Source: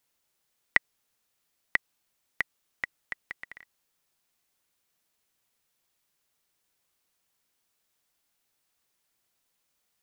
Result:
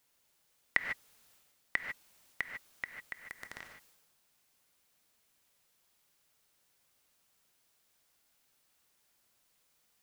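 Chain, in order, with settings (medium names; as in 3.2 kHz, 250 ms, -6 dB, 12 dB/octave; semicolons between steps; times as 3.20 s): transient shaper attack -9 dB, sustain +8 dB; gated-style reverb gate 170 ms rising, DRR 4.5 dB; trim +2.5 dB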